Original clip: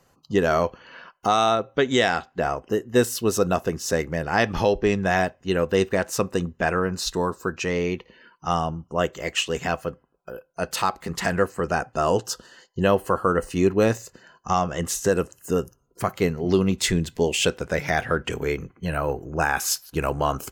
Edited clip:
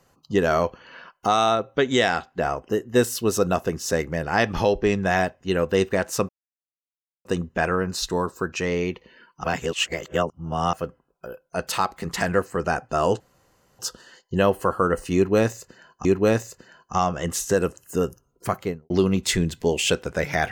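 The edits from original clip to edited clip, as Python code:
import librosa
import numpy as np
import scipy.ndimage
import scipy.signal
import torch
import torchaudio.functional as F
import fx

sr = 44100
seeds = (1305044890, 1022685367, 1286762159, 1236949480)

y = fx.studio_fade_out(x, sr, start_s=16.05, length_s=0.4)
y = fx.edit(y, sr, fx.insert_silence(at_s=6.29, length_s=0.96),
    fx.reverse_span(start_s=8.48, length_s=1.29),
    fx.insert_room_tone(at_s=12.24, length_s=0.59),
    fx.repeat(start_s=13.6, length_s=0.9, count=2), tone=tone)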